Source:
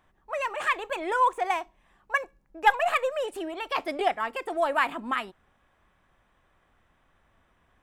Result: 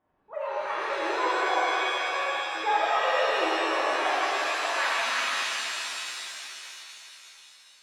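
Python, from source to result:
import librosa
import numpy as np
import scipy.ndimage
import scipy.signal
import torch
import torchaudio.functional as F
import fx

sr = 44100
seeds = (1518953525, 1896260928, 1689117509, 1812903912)

y = fx.filter_sweep_bandpass(x, sr, from_hz=370.0, to_hz=3100.0, start_s=3.51, end_s=4.29, q=0.7)
y = fx.rev_shimmer(y, sr, seeds[0], rt60_s=3.3, semitones=7, shimmer_db=-2, drr_db=-8.5)
y = y * librosa.db_to_amplitude(-6.0)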